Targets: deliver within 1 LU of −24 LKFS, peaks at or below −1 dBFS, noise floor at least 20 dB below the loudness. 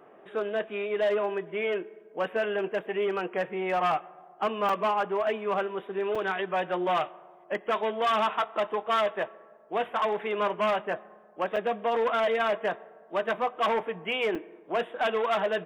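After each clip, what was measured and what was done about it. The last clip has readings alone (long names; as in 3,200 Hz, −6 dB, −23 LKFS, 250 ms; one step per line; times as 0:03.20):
share of clipped samples 0.9%; peaks flattened at −21.0 dBFS; number of dropouts 4; longest dropout 4.7 ms; integrated loudness −29.0 LKFS; sample peak −21.0 dBFS; target loudness −24.0 LKFS
→ clipped peaks rebuilt −21 dBFS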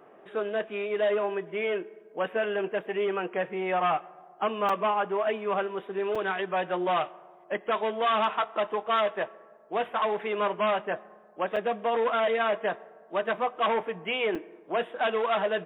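share of clipped samples 0.0%; number of dropouts 4; longest dropout 4.7 ms
→ repair the gap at 0:04.69/0:06.15/0:11.56/0:14.35, 4.7 ms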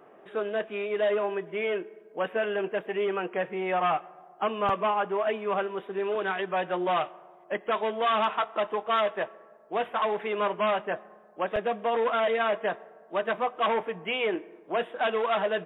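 number of dropouts 0; integrated loudness −29.0 LKFS; sample peak −17.0 dBFS; target loudness −24.0 LKFS
→ level +5 dB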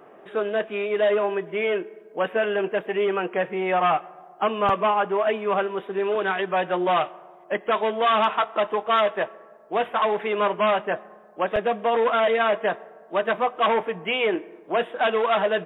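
integrated loudness −24.0 LKFS; sample peak −12.0 dBFS; background noise floor −49 dBFS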